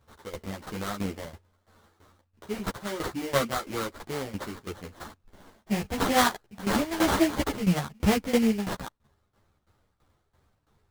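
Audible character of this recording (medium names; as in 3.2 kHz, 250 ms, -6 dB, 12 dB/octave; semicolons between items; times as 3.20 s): aliases and images of a low sample rate 2.6 kHz, jitter 20%; tremolo saw down 3 Hz, depth 85%; a shimmering, thickened sound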